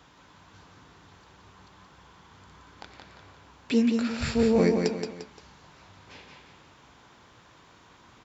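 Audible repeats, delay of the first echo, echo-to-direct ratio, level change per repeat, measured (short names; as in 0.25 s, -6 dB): 3, 0.174 s, -4.5 dB, -8.0 dB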